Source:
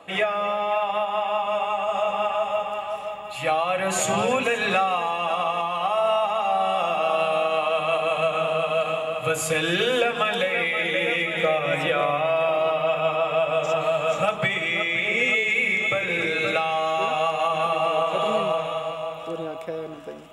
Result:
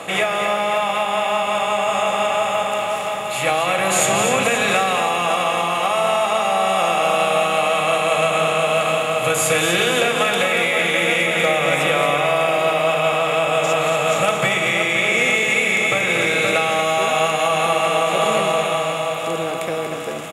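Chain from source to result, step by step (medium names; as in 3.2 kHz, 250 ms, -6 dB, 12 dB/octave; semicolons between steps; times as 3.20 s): spectral levelling over time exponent 0.6; treble shelf 6.1 kHz +8.5 dB; on a send: delay 234 ms -7.5 dB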